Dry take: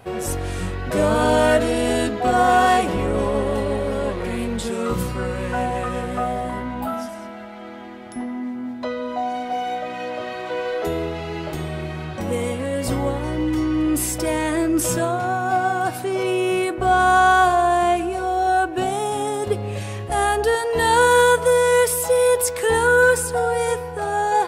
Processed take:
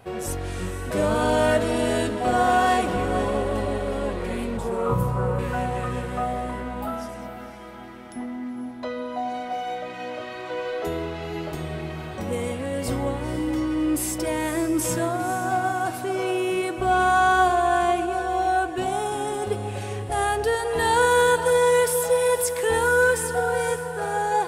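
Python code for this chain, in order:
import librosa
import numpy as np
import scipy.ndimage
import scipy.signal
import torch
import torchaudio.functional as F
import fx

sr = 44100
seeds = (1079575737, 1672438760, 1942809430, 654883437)

y = fx.graphic_eq_10(x, sr, hz=(125, 250, 500, 1000, 2000, 4000, 8000), db=(11, -7, 4, 11, -9, -12, -6), at=(4.57, 5.39))
y = fx.echo_diffused(y, sr, ms=496, feedback_pct=48, wet_db=-10.5)
y = y * 10.0 ** (-4.0 / 20.0)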